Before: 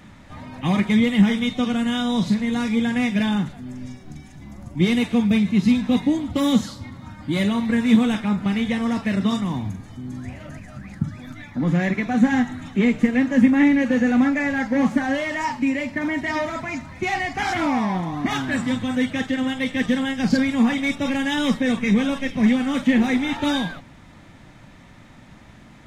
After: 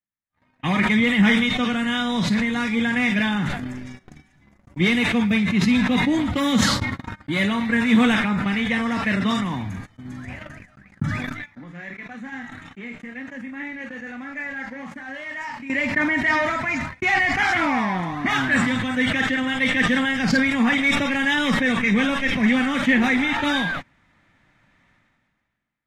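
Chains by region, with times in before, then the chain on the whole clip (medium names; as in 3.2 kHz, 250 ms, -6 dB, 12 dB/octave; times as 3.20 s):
11.43–15.70 s: doubling 30 ms -9 dB + compression, threshold -29 dBFS + bass shelf 250 Hz -3.5 dB
whole clip: gate -32 dBFS, range -54 dB; peaking EQ 1.8 kHz +10 dB 1.6 oct; decay stretcher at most 29 dB/s; trim -3 dB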